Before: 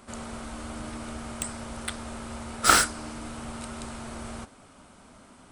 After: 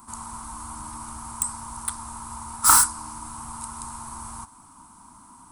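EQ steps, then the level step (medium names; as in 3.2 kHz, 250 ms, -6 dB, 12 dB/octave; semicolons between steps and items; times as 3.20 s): FFT filter 330 Hz 0 dB, 490 Hz -24 dB, 940 Hz +5 dB, 1.8 kHz -8 dB, 3.1 kHz -9 dB, 11 kHz +14 dB; dynamic bell 270 Hz, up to -6 dB, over -50 dBFS, Q 0.95; peaking EQ 1 kHz +9.5 dB 0.47 oct; -1.0 dB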